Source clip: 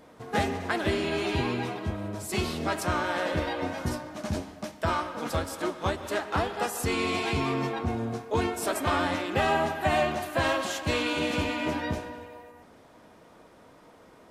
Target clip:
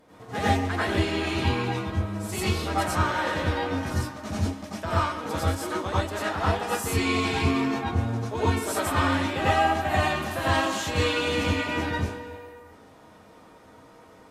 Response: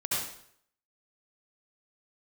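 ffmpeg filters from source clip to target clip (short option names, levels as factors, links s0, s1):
-filter_complex "[1:a]atrim=start_sample=2205,atrim=end_sample=4410,asetrate=34839,aresample=44100[s0];[0:a][s0]afir=irnorm=-1:irlink=0,volume=0.631"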